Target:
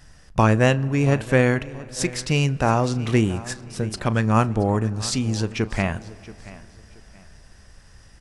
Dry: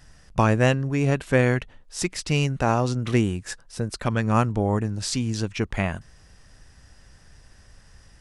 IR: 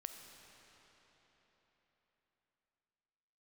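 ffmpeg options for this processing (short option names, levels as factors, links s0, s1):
-filter_complex "[0:a]aecho=1:1:678|1356:0.119|0.0345,asplit=2[s0][s1];[1:a]atrim=start_sample=2205,highshelf=f=4800:g=-10.5,adelay=36[s2];[s1][s2]afir=irnorm=-1:irlink=0,volume=0.299[s3];[s0][s3]amix=inputs=2:normalize=0,volume=1.26"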